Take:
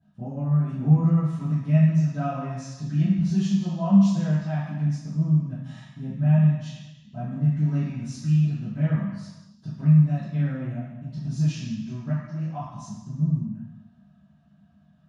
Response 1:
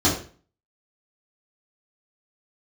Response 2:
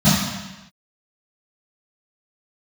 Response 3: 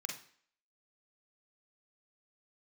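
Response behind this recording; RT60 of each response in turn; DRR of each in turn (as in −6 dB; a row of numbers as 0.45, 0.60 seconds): 2; 0.40 s, non-exponential decay, 0.55 s; −8.5, −15.0, 0.5 decibels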